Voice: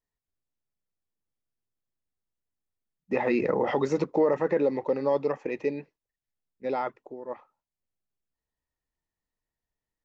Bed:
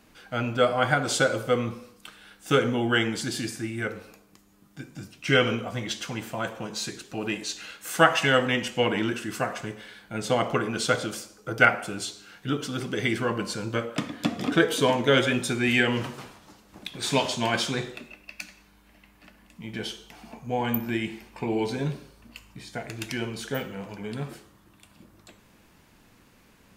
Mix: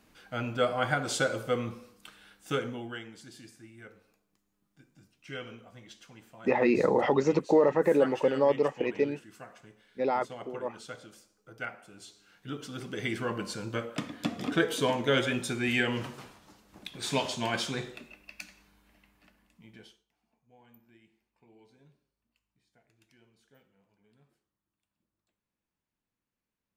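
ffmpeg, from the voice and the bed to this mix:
-filter_complex "[0:a]adelay=3350,volume=1dB[a];[1:a]volume=8.5dB,afade=t=out:st=2.21:d=0.8:silence=0.199526,afade=t=in:st=11.89:d=1.44:silence=0.199526,afade=t=out:st=18.66:d=1.39:silence=0.0421697[b];[a][b]amix=inputs=2:normalize=0"

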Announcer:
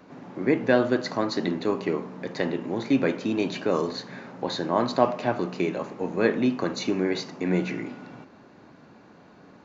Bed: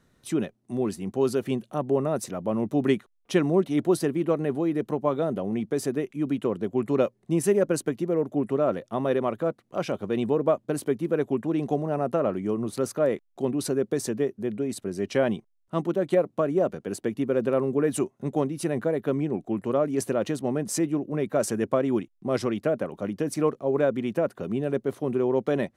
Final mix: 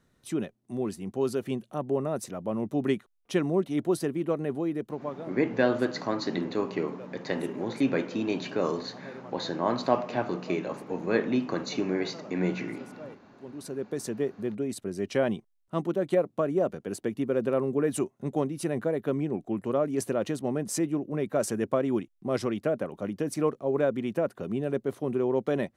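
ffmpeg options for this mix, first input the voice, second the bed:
-filter_complex "[0:a]adelay=4900,volume=-3.5dB[a];[1:a]volume=14.5dB,afade=t=out:st=4.67:d=0.68:silence=0.141254,afade=t=in:st=13.4:d=0.92:silence=0.11885[b];[a][b]amix=inputs=2:normalize=0"

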